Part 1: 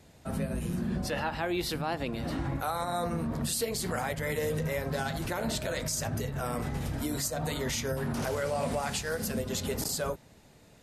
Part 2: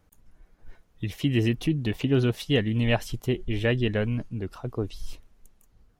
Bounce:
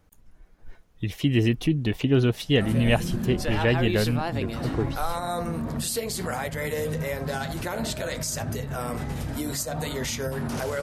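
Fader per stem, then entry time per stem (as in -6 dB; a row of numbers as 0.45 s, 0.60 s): +2.5 dB, +2.0 dB; 2.35 s, 0.00 s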